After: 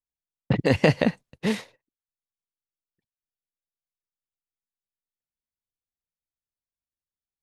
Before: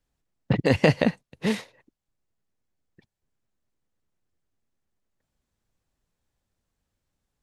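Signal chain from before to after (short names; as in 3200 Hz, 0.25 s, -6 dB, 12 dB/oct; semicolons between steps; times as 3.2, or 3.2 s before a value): gate -48 dBFS, range -24 dB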